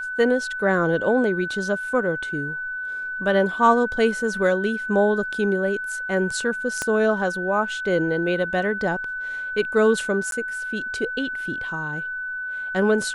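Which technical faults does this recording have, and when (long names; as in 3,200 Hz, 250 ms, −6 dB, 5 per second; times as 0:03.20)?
whistle 1,500 Hz −27 dBFS
0:06.82: click −11 dBFS
0:10.31–0:10.32: drop-out 12 ms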